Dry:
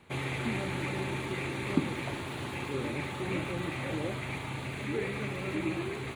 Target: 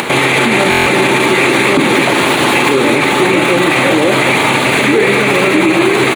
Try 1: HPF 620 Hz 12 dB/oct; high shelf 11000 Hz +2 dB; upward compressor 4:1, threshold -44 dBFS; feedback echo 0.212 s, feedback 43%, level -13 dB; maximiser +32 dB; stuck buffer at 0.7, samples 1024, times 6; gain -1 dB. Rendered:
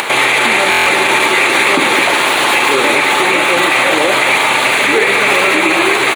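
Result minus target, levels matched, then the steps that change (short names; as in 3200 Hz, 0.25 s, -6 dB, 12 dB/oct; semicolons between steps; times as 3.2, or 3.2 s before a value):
250 Hz band -8.0 dB
change: HPF 260 Hz 12 dB/oct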